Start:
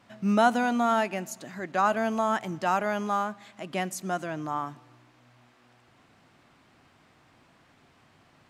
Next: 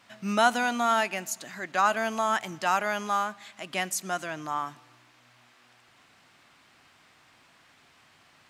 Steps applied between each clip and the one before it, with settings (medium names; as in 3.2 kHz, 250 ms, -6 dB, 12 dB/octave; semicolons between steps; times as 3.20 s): tilt shelf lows -6.5 dB, about 900 Hz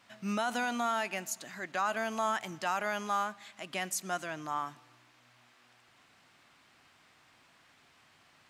peak limiter -17.5 dBFS, peak gain reduction 9 dB; trim -4 dB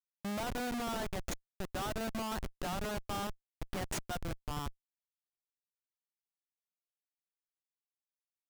Schmitt trigger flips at -32.5 dBFS; trim +1 dB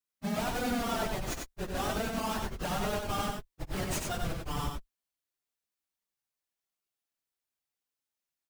phase randomisation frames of 50 ms; on a send: multi-tap echo 73/94 ms -15/-4 dB; on the sum: trim +3.5 dB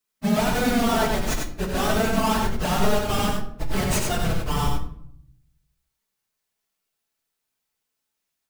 reverberation RT60 0.70 s, pre-delay 5 ms, DRR 4.5 dB; trim +8.5 dB